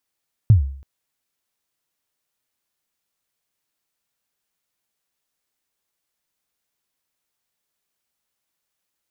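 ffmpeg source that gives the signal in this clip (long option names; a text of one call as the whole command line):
ffmpeg -f lavfi -i "aevalsrc='0.562*pow(10,-3*t/0.54)*sin(2*PI*(120*0.122/log(68/120)*(exp(log(68/120)*min(t,0.122)/0.122)-1)+68*max(t-0.122,0)))':duration=0.33:sample_rate=44100" out.wav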